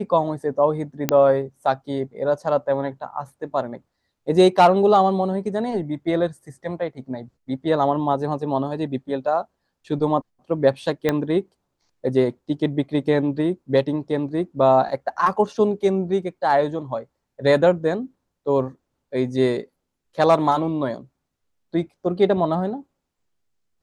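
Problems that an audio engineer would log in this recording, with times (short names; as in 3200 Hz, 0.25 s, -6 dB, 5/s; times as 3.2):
1.09 pop -3 dBFS
11.09 pop -7 dBFS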